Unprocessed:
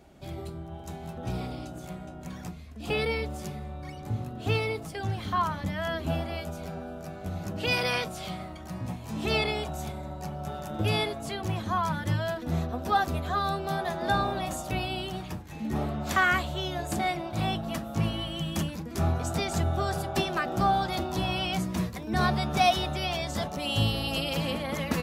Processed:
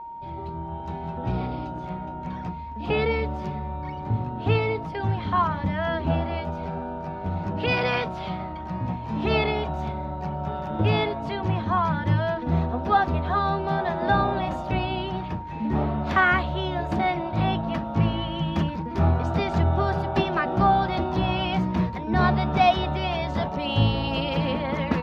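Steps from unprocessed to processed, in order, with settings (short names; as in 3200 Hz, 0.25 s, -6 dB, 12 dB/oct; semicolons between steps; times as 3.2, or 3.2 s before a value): AGC gain up to 7 dB; whine 930 Hz -33 dBFS; air absorption 290 m; gain -1 dB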